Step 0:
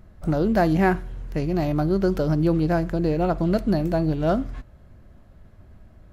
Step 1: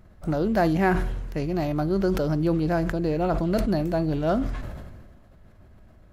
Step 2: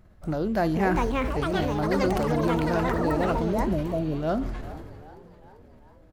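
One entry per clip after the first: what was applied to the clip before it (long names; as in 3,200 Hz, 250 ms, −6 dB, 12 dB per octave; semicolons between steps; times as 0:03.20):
low-shelf EQ 240 Hz −3.5 dB; level that may fall only so fast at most 34 dB per second; level −1.5 dB
echo with shifted repeats 395 ms, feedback 56%, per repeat +67 Hz, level −18 dB; healed spectral selection 0:03.52–0:04.13, 720–5,300 Hz; delay with pitch and tempo change per echo 571 ms, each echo +6 semitones, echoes 3; level −3 dB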